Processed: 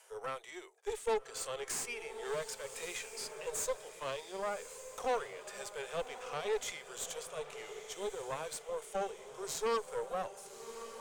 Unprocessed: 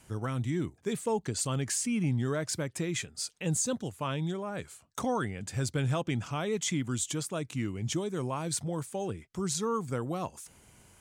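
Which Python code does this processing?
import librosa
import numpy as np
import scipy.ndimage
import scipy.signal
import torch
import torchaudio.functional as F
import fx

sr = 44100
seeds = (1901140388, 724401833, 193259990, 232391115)

p1 = scipy.signal.sosfilt(scipy.signal.butter(12, 420.0, 'highpass', fs=sr, output='sos'), x)
p2 = fx.hpss(p1, sr, part='percussive', gain_db=-13)
p3 = fx.cheby_harmonics(p2, sr, harmonics=(5, 8), levels_db=(-18, -17), full_scale_db=-21.5)
p4 = p3 + fx.echo_diffused(p3, sr, ms=1183, feedback_pct=42, wet_db=-11, dry=0)
p5 = fx.band_squash(p4, sr, depth_pct=40, at=(1.63, 3.41))
y = p5 * librosa.db_to_amplitude(-2.0)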